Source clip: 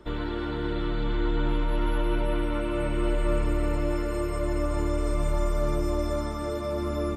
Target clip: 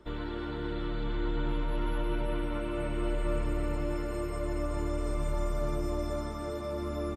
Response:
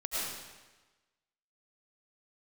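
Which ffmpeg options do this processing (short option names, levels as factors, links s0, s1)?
-filter_complex "[0:a]asplit=5[s0][s1][s2][s3][s4];[s1]adelay=242,afreqshift=100,volume=0.1[s5];[s2]adelay=484,afreqshift=200,volume=0.049[s6];[s3]adelay=726,afreqshift=300,volume=0.024[s7];[s4]adelay=968,afreqshift=400,volume=0.0117[s8];[s0][s5][s6][s7][s8]amix=inputs=5:normalize=0,volume=0.531"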